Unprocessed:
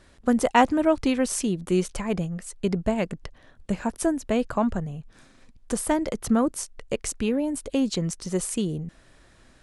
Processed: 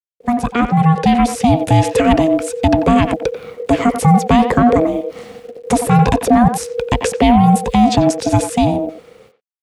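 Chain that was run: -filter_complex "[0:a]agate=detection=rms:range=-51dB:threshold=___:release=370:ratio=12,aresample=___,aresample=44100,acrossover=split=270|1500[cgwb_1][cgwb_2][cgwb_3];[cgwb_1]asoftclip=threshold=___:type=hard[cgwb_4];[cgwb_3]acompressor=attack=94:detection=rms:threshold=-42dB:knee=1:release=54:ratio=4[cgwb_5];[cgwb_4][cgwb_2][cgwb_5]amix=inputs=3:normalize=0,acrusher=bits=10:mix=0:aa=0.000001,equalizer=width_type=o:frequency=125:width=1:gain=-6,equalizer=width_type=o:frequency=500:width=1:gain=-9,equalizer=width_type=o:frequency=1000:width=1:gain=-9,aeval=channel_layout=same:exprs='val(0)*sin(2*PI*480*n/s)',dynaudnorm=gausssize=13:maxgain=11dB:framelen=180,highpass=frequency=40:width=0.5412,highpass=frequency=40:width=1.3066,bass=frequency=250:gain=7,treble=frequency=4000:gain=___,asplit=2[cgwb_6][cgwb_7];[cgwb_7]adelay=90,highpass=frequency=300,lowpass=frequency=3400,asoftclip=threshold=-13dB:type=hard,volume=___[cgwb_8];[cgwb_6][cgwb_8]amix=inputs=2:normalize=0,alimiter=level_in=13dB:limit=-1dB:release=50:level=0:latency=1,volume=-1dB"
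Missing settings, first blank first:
-47dB, 32000, -29dB, -9, -11dB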